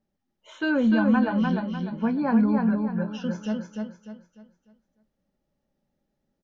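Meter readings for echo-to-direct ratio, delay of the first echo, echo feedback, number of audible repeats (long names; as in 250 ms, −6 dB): −3.0 dB, 299 ms, 36%, 4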